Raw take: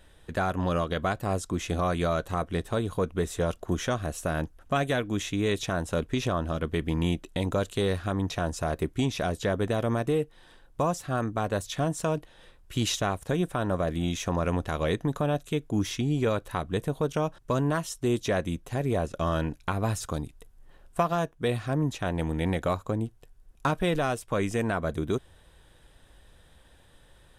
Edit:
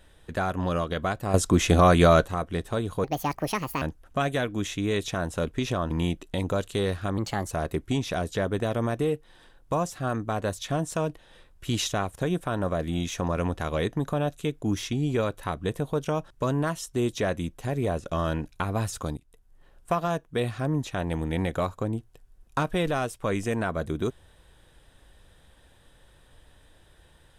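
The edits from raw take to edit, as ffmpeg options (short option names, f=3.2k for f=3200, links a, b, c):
-filter_complex "[0:a]asplit=9[a][b][c][d][e][f][g][h][i];[a]atrim=end=1.342[j];[b]atrim=start=1.338:end=2.262,asetpts=PTS-STARTPTS,volume=9.5dB[k];[c]atrim=start=2.258:end=3.044[l];[d]atrim=start=3.04:end=4.37,asetpts=PTS-STARTPTS,asetrate=75411,aresample=44100[m];[e]atrim=start=4.366:end=6.462[n];[f]atrim=start=6.928:end=8.204[o];[g]atrim=start=8.2:end=8.59,asetpts=PTS-STARTPTS,asetrate=51597,aresample=44100[p];[h]atrim=start=8.586:end=20.25,asetpts=PTS-STARTPTS,afade=t=out:st=11.66:d=0.004:c=hsin:silence=0.223872[q];[i]atrim=start=20.25,asetpts=PTS-STARTPTS,afade=t=in:d=1.07:c=qsin:silence=0.223872[r];[j][k]acrossfade=d=0.004:c1=hsin:c2=hsin[s];[s][l]acrossfade=d=0.004:c1=hsin:c2=hsin[t];[t][m]acrossfade=d=0.004:c1=hsin:c2=hsin[u];[u][n]acrossfade=d=0.004:c1=hsin:c2=hsin[v];[v][o]acrossfade=d=0.004:c1=hsin:c2=hsin[w];[w][p]acrossfade=d=0.004:c1=hsin:c2=hsin[x];[q][r]concat=n=2:v=0:a=1[y];[x][y]acrossfade=d=0.004:c1=hsin:c2=hsin"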